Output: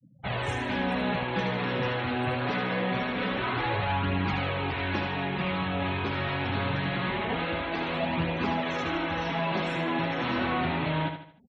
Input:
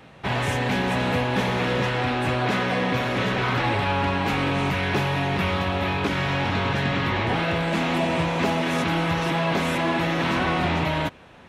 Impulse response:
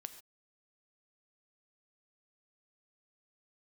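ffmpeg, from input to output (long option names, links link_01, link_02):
-filter_complex "[0:a]afftfilt=real='re*gte(hypot(re,im),0.0178)':imag='im*gte(hypot(re,im),0.0178)':win_size=1024:overlap=0.75,flanger=delay=0.3:depth=8.5:regen=-13:speed=0.24:shape=triangular,asplit=2[link_01][link_02];[link_02]aecho=0:1:76|152|228|304:0.422|0.164|0.0641|0.025[link_03];[link_01][link_03]amix=inputs=2:normalize=0,volume=-3dB"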